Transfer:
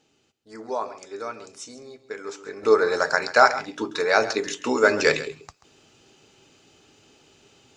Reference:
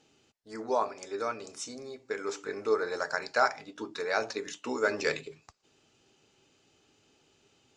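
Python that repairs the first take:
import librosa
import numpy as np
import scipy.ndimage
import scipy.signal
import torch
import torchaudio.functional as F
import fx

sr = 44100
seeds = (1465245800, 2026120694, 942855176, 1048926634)

y = fx.fix_echo_inverse(x, sr, delay_ms=135, level_db=-15.0)
y = fx.fix_level(y, sr, at_s=2.63, step_db=-10.0)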